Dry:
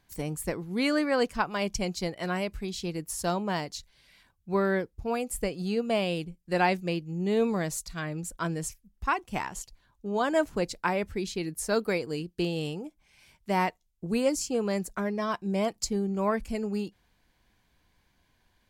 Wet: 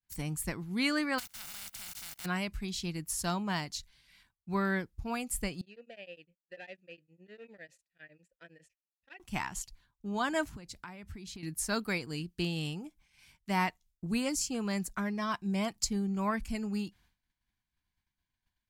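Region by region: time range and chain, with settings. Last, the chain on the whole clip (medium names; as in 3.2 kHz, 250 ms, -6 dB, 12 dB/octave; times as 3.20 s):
1.18–2.24 s: spectral contrast reduction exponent 0.11 + comb 1.4 ms, depth 30% + level held to a coarse grid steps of 22 dB
5.61–9.20 s: hard clipper -23 dBFS + vowel filter e + tremolo of two beating tones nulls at 9.9 Hz
10.46–11.43 s: high-pass 55 Hz + bass shelf 140 Hz +8.5 dB + compression 10:1, threshold -39 dBFS
whole clip: expander -56 dBFS; peaking EQ 490 Hz -13 dB 1.1 oct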